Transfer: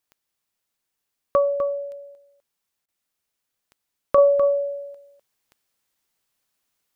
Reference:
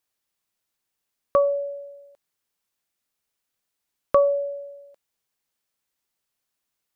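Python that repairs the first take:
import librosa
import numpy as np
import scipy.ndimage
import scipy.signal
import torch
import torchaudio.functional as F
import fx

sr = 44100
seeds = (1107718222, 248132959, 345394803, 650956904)

y = fx.fix_declick_ar(x, sr, threshold=10.0)
y = fx.fix_interpolate(y, sr, at_s=(2.86,), length_ms=22.0)
y = fx.fix_echo_inverse(y, sr, delay_ms=251, level_db=-9.5)
y = fx.gain(y, sr, db=fx.steps((0.0, 0.0), (4.18, -4.5)))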